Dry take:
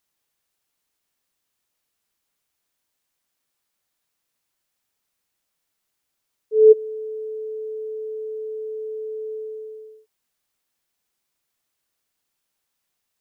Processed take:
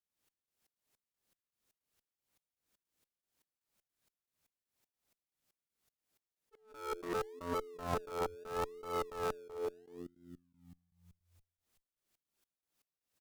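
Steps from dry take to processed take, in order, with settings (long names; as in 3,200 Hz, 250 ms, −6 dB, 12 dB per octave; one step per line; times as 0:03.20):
dynamic equaliser 380 Hz, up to +3 dB, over −29 dBFS, Q 4
echo with shifted repeats 406 ms, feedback 54%, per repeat −87 Hz, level −17 dB
gate pattern ".xx..xx.xx." 158 BPM −24 dB
in parallel at −11.5 dB: sample-and-hold swept by an LFO 36×, swing 60% 0.76 Hz
on the sum: harmonic generator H 7 −10 dB, 8 −27 dB, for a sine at −14.5 dBFS
level that may rise only so fast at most 110 dB per second
level +1 dB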